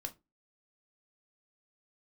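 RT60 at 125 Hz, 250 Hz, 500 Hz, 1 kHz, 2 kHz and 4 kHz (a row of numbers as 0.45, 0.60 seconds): 0.30, 0.30, 0.25, 0.20, 0.20, 0.15 seconds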